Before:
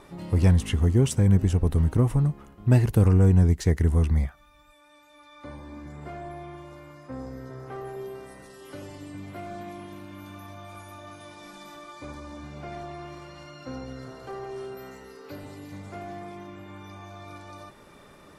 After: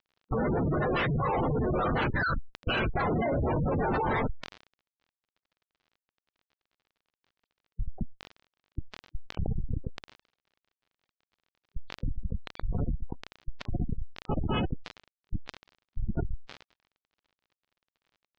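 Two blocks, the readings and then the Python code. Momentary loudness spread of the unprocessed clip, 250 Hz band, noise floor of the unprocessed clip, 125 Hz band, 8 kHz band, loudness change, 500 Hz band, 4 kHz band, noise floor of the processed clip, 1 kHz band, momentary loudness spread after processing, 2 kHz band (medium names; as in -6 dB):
21 LU, -5.5 dB, -53 dBFS, -11.0 dB, under -20 dB, -9.0 dB, -0.5 dB, +1.5 dB, under -85 dBFS, +6.0 dB, 18 LU, +7.0 dB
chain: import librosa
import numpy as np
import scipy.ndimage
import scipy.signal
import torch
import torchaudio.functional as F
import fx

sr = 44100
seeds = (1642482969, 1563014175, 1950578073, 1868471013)

y = fx.octave_mirror(x, sr, pivot_hz=1000.0)
y = fx.rider(y, sr, range_db=5, speed_s=2.0)
y = np.repeat(y[::8], 8)[:len(y)]
y = fx.highpass(y, sr, hz=470.0, slope=6)
y = fx.high_shelf(y, sr, hz=2700.0, db=-9.0)
y = fx.rev_fdn(y, sr, rt60_s=0.6, lf_ratio=1.35, hf_ratio=0.4, size_ms=40.0, drr_db=-0.5)
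y = fx.schmitt(y, sr, flips_db=-30.0)
y = fx.dmg_crackle(y, sr, seeds[0], per_s=38.0, level_db=-59.0)
y = fx.spec_gate(y, sr, threshold_db=-15, keep='strong')
y = scipy.signal.sosfilt(scipy.signal.butter(4, 4500.0, 'lowpass', fs=sr, output='sos'), y)
y = fx.sustainer(y, sr, db_per_s=110.0)
y = F.gain(torch.from_numpy(y), 8.0).numpy()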